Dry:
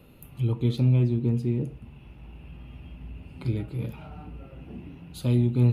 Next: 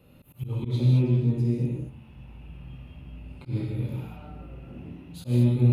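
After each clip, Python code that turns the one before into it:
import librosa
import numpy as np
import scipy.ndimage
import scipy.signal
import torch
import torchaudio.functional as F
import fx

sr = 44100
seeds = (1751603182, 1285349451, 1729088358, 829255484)

y = fx.rev_gated(x, sr, seeds[0], gate_ms=250, shape='flat', drr_db=-4.0)
y = fx.auto_swell(y, sr, attack_ms=102.0)
y = y * 10.0 ** (-6.0 / 20.0)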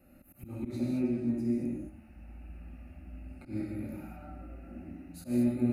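y = fx.fixed_phaser(x, sr, hz=670.0, stages=8)
y = y + 10.0 ** (-15.5 / 20.0) * np.pad(y, (int(93 * sr / 1000.0), 0))[:len(y)]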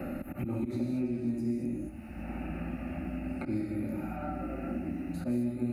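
y = fx.band_squash(x, sr, depth_pct=100)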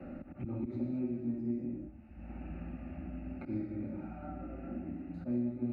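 y = fx.spacing_loss(x, sr, db_at_10k=29)
y = fx.band_widen(y, sr, depth_pct=70)
y = y * 10.0 ** (-3.5 / 20.0)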